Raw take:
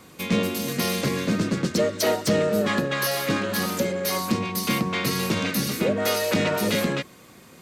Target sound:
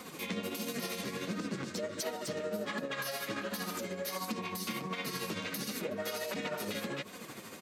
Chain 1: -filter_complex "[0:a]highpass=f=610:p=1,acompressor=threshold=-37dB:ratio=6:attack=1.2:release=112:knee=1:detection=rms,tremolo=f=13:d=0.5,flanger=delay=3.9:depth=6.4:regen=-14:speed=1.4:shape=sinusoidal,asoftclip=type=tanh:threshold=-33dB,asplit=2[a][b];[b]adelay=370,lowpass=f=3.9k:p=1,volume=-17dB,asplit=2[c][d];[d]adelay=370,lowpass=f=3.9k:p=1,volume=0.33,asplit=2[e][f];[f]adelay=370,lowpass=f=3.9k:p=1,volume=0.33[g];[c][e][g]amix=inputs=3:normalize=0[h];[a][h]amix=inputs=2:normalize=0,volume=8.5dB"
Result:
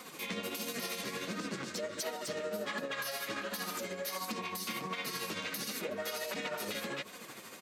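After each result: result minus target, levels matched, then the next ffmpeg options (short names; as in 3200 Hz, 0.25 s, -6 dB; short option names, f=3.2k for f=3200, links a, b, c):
soft clip: distortion +20 dB; 250 Hz band -3.5 dB
-filter_complex "[0:a]highpass=f=610:p=1,acompressor=threshold=-37dB:ratio=6:attack=1.2:release=112:knee=1:detection=rms,tremolo=f=13:d=0.5,flanger=delay=3.9:depth=6.4:regen=-14:speed=1.4:shape=sinusoidal,asoftclip=type=tanh:threshold=-22dB,asplit=2[a][b];[b]adelay=370,lowpass=f=3.9k:p=1,volume=-17dB,asplit=2[c][d];[d]adelay=370,lowpass=f=3.9k:p=1,volume=0.33,asplit=2[e][f];[f]adelay=370,lowpass=f=3.9k:p=1,volume=0.33[g];[c][e][g]amix=inputs=3:normalize=0[h];[a][h]amix=inputs=2:normalize=0,volume=8.5dB"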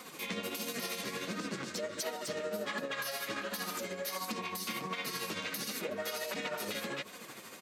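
250 Hz band -3.5 dB
-filter_complex "[0:a]highpass=f=220:p=1,acompressor=threshold=-37dB:ratio=6:attack=1.2:release=112:knee=1:detection=rms,tremolo=f=13:d=0.5,flanger=delay=3.9:depth=6.4:regen=-14:speed=1.4:shape=sinusoidal,asoftclip=type=tanh:threshold=-22dB,asplit=2[a][b];[b]adelay=370,lowpass=f=3.9k:p=1,volume=-17dB,asplit=2[c][d];[d]adelay=370,lowpass=f=3.9k:p=1,volume=0.33,asplit=2[e][f];[f]adelay=370,lowpass=f=3.9k:p=1,volume=0.33[g];[c][e][g]amix=inputs=3:normalize=0[h];[a][h]amix=inputs=2:normalize=0,volume=8.5dB"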